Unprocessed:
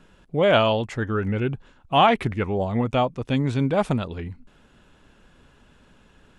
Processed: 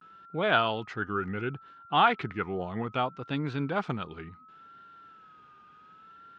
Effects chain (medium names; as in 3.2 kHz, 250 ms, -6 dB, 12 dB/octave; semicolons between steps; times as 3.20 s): whistle 1.3 kHz -51 dBFS; vibrato 0.67 Hz 97 cents; cabinet simulation 150–5100 Hz, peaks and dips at 240 Hz -5 dB, 570 Hz -8 dB, 1.4 kHz +8 dB; trim -6 dB